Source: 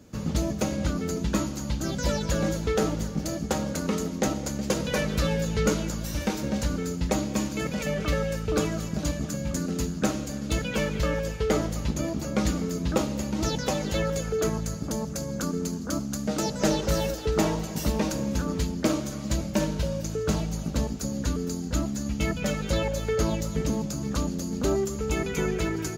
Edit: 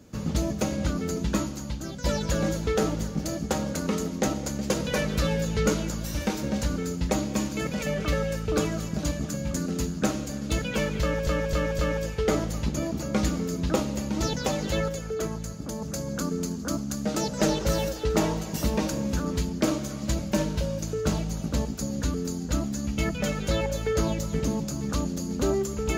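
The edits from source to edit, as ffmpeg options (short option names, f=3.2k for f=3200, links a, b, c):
-filter_complex "[0:a]asplit=7[a][b][c][d][e][f][g];[a]atrim=end=2.04,asetpts=PTS-STARTPTS,afade=t=out:st=1.32:d=0.72:silence=0.354813[h];[b]atrim=start=2.04:end=11.272,asetpts=PTS-STARTPTS,afade=t=in:d=0.004:c=hsin:silence=0.354813[i];[c]atrim=start=11.008:end=11.272[j];[d]atrim=start=11.008:end=11.272[k];[e]atrim=start=11.008:end=14.112[l];[f]atrim=start=14.108:end=15.042,asetpts=PTS-STARTPTS,volume=-4dB[m];[g]atrim=start=15.038[n];[h][i]concat=n=2:v=0:a=1[o];[o][j]acrossfade=d=0.004:c1=hsin:c2=hsin[p];[p][k]acrossfade=d=0.004:c1=hsin:c2=hsin[q];[q][l]acrossfade=d=0.004:c1=hsin:c2=hsin[r];[r][m]acrossfade=d=0.004:c1=hsin:c2=hsin[s];[s][n]acrossfade=d=0.004:c1=hsin:c2=hsin"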